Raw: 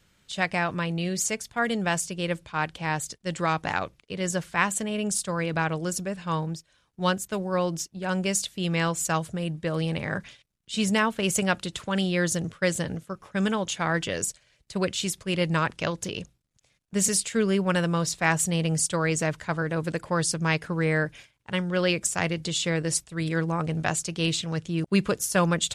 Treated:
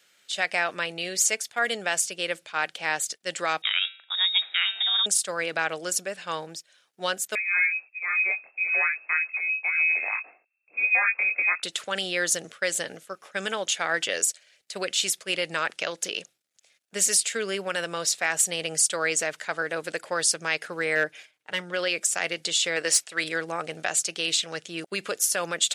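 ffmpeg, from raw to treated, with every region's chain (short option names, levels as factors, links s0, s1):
-filter_complex "[0:a]asettb=1/sr,asplit=3[s0][s1][s2];[s0]atrim=end=3.624[s3];[s1]atrim=start=3.62:end=5.06,asetpts=PTS-STARTPTS,afade=t=in:d=0.004:c=qsin,afade=t=out:st=1.436:d=0.004:c=qsin,bandreject=f=195.2:t=h:w=4,bandreject=f=390.4:t=h:w=4,bandreject=f=585.6:t=h:w=4,bandreject=f=780.8:t=h:w=4,bandreject=f=976:t=h:w=4,bandreject=f=1171.2:t=h:w=4,bandreject=f=1366.4:t=h:w=4,bandreject=f=1561.6:t=h:w=4,bandreject=f=1756.8:t=h:w=4,bandreject=f=1952:t=h:w=4,bandreject=f=2147.2:t=h:w=4,bandreject=f=2342.4:t=h:w=4,bandreject=f=2537.6:t=h:w=4,lowpass=f=3300:t=q:w=0.5098,lowpass=f=3300:t=q:w=0.6013,lowpass=f=3300:t=q:w=0.9,lowpass=f=3300:t=q:w=2.563,afreqshift=-3900[s4];[s2]atrim=start=5.056[s5];[s3][s4]acrossfade=d=0.004:c1=hsin:c2=qsin[s6];[s6][s5]acrossfade=d=0.004:c1=qsin:c2=hsin,asettb=1/sr,asplit=3[s7][s8][s9];[s7]atrim=end=7.354[s10];[s8]atrim=start=7.35:end=11.63,asetpts=PTS-STARTPTS,afade=t=in:d=0.004:c=qsin,afade=t=out:st=4.276:d=0.004:c=qsin,flanger=delay=19:depth=6:speed=1.4,lowpass=f=2300:t=q:w=0.5098,lowpass=f=2300:t=q:w=0.6013,lowpass=f=2300:t=q:w=0.9,lowpass=f=2300:t=q:w=2.563,afreqshift=-2700[s11];[s9]atrim=start=11.626[s12];[s10][s11]acrossfade=d=0.004:c1=hsin:c2=qsin[s13];[s13][s12]acrossfade=d=0.004:c1=qsin:c2=hsin,asettb=1/sr,asplit=3[s14][s15][s16];[s14]atrim=end=20.954[s17];[s15]atrim=start=20.95:end=21.74,asetpts=PTS-STARTPTS,afade=t=in:d=0.004:c=qsin,afade=t=out:st=0.786:d=0.004:c=qsin,highshelf=f=2300:g=-6,volume=8.91,asoftclip=hard,volume=0.112,aecho=1:1:6.5:0.4,atrim=end_sample=34839[s18];[s16]atrim=start=21.736[s19];[s17][s18]acrossfade=d=0.004:c1=hsin:c2=qsin[s20];[s20][s19]acrossfade=d=0.004:c1=qsin:c2=hsin,asettb=1/sr,asplit=3[s21][s22][s23];[s21]atrim=end=22.764[s24];[s22]atrim=start=22.76:end=23.24,asetpts=PTS-STARTPTS,afade=t=in:d=0.004:c=qsin,afade=t=out:st=0.476:d=0.004:c=qsin,asplit=2[s25][s26];[s26]highpass=f=720:p=1,volume=3.98,asoftclip=type=tanh:threshold=0.282[s27];[s25][s27]amix=inputs=2:normalize=0,lowpass=f=5000:p=1,volume=0.501,bandreject=f=3600:w=25[s28];[s23]atrim=start=23.236[s29];[s24][s28]acrossfade=d=0.004:c1=hsin:c2=qsin[s30];[s30][s29]acrossfade=d=0.004:c1=qsin:c2=hsin,alimiter=limit=0.168:level=0:latency=1:release=79,highpass=620,equalizer=f=1000:t=o:w=0.51:g=-10,volume=1.88"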